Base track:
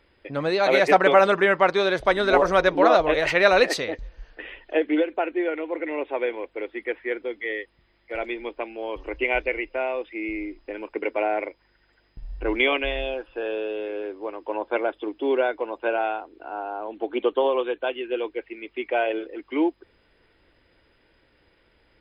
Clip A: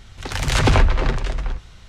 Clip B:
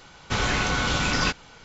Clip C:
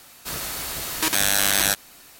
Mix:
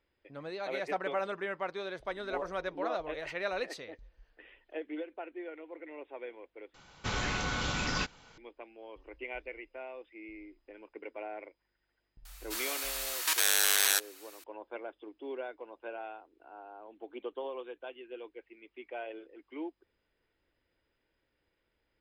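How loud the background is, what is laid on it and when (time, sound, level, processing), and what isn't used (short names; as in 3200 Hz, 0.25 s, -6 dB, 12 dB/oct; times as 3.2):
base track -17.5 dB
6.74 replace with B -9 dB
12.25 add C -6 dB + HPF 960 Hz
not used: A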